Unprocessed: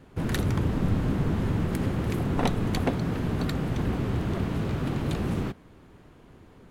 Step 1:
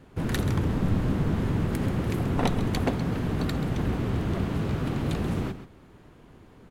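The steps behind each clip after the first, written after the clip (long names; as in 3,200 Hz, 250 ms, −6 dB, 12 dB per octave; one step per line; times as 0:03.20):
single-tap delay 133 ms −12 dB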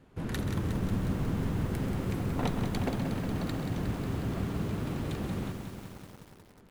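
on a send at −15 dB: convolution reverb RT60 0.60 s, pre-delay 3 ms
on the sum: feedback echo at a low word length 181 ms, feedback 80%, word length 7 bits, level −7 dB
level −7 dB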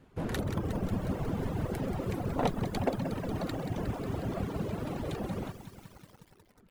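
reverb reduction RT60 1.5 s
dynamic equaliser 610 Hz, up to +8 dB, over −54 dBFS, Q 0.97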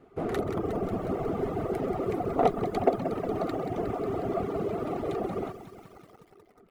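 notch filter 1,900 Hz, Q 10
hollow resonant body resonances 410/690/1,200/1,900 Hz, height 16 dB, ringing for 20 ms
level −5.5 dB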